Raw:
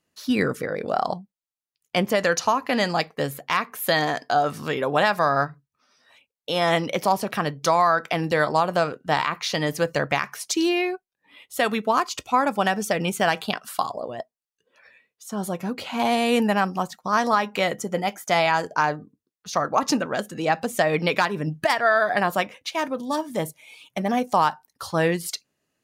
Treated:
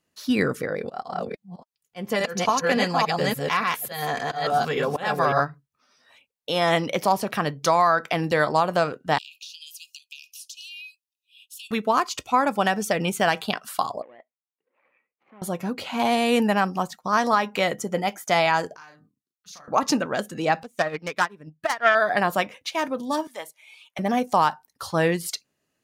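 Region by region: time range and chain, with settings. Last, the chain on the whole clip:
0:00.78–0:05.40: delay that plays each chunk backwards 284 ms, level −1.5 dB + volume swells 220 ms + notch comb filter 310 Hz
0:09.18–0:11.71: Chebyshev high-pass filter 2,500 Hz, order 10 + downward compressor 8 to 1, threshold −37 dBFS
0:14.02–0:15.42: running median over 25 samples + downward compressor 2 to 1, threshold −44 dBFS + loudspeaker in its box 420–2,400 Hz, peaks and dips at 430 Hz −7 dB, 660 Hz −8 dB, 980 Hz −4 dB, 1,500 Hz −5 dB, 2,100 Hz +5 dB
0:18.76–0:19.68: downward compressor 2.5 to 1, threshold −35 dBFS + guitar amp tone stack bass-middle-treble 5-5-5 + double-tracking delay 37 ms −3 dB
0:20.63–0:21.95: phase distortion by the signal itself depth 0.09 ms + dynamic equaliser 1,400 Hz, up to +5 dB, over −31 dBFS, Q 1.4 + expander for the loud parts 2.5 to 1, over −31 dBFS
0:23.27–0:23.99: Bessel high-pass filter 1,100 Hz + high-shelf EQ 4,800 Hz −8 dB
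whole clip: no processing

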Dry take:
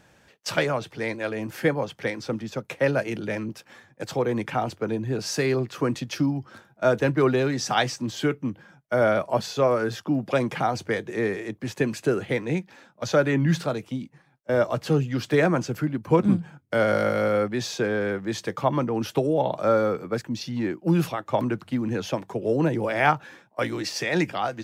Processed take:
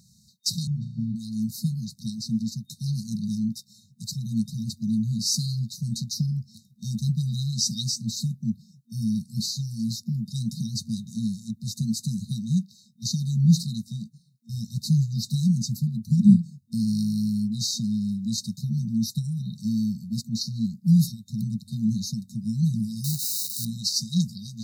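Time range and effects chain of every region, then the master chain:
0:00.67–0:01.16: moving average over 44 samples + flutter between parallel walls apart 5.9 metres, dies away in 0.49 s + multiband upward and downward compressor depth 100%
0:23.04–0:23.65: spike at every zero crossing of −17.5 dBFS + high-shelf EQ 4,000 Hz −6.5 dB
whole clip: high-pass filter 150 Hz 6 dB per octave; brick-wall band-stop 230–3,700 Hz; dynamic equaliser 240 Hz, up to +4 dB, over −43 dBFS, Q 2; level +6.5 dB

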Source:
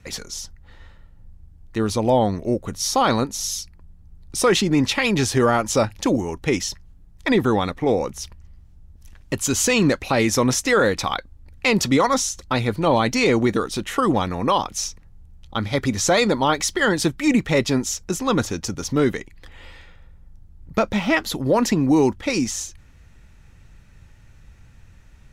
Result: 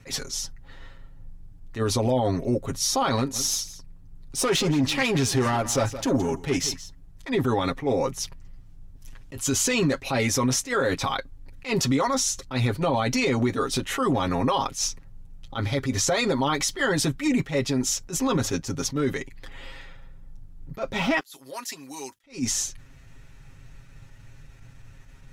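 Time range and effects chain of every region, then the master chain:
0:03.16–0:07.31: tube saturation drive 16 dB, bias 0.25 + single-tap delay 170 ms −16.5 dB
0:21.20–0:22.24: first difference + gain into a clipping stage and back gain 18.5 dB
whole clip: comb filter 7.4 ms, depth 77%; brickwall limiter −15 dBFS; level that may rise only so fast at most 220 dB per second

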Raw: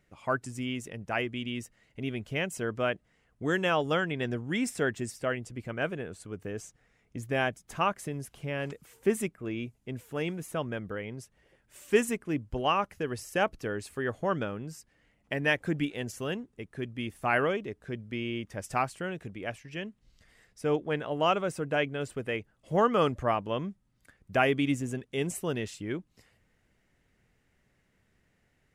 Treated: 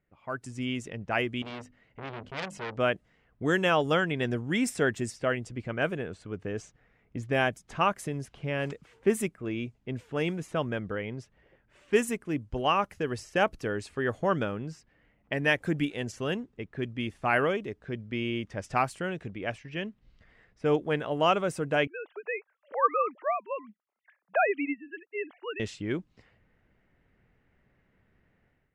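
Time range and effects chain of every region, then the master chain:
0:01.42–0:02.77: mains-hum notches 50/100/150/200/250/300 Hz + saturating transformer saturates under 3,400 Hz
0:21.87–0:25.60: three sine waves on the formant tracks + high-pass filter 590 Hz
whole clip: low-pass that shuts in the quiet parts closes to 2,200 Hz, open at −27 dBFS; automatic gain control gain up to 11.5 dB; level −8.5 dB

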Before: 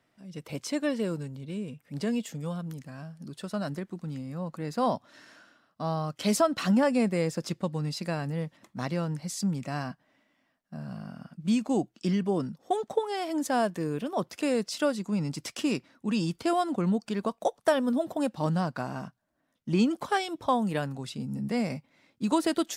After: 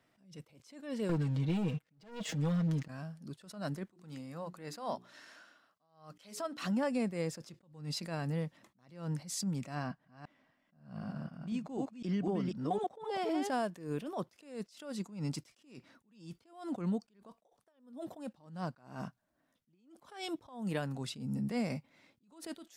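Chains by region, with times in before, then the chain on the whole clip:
0:01.09–0:02.88: low-pass filter 5,500 Hz + leveller curve on the samples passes 3 + comb filter 6.3 ms, depth 72%
0:03.92–0:06.62: low-shelf EQ 290 Hz −10.5 dB + mains-hum notches 60/120/180/240/300/360/420 Hz
0:09.75–0:13.50: delay that plays each chunk backwards 253 ms, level −3 dB + high-shelf EQ 6,000 Hz −10.5 dB
whole clip: downward compressor 6 to 1, threshold −28 dBFS; level that may rise only so fast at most 120 dB per second; level −1.5 dB

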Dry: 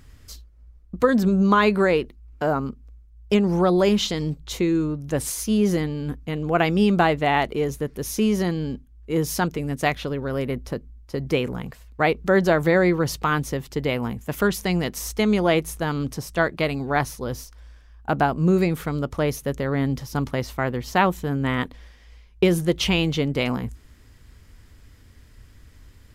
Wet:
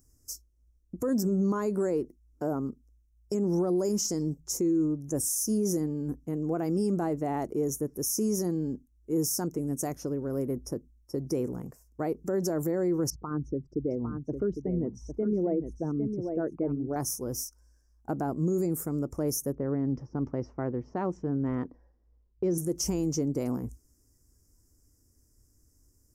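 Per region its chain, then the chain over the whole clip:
0:13.10–0:16.96: spectral envelope exaggerated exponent 2 + head-to-tape spacing loss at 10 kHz 35 dB + single-tap delay 805 ms −7.5 dB
0:19.52–0:22.58: low-pass filter 5,500 Hz 24 dB per octave + low-pass that shuts in the quiet parts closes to 1,000 Hz, open at −14 dBFS
whole clip: noise reduction from a noise print of the clip's start 10 dB; drawn EQ curve 210 Hz 0 dB, 320 Hz +7 dB, 460 Hz +1 dB, 1,400 Hz −9 dB, 3,700 Hz −27 dB, 5,500 Hz +13 dB; brickwall limiter −13.5 dBFS; level −7 dB

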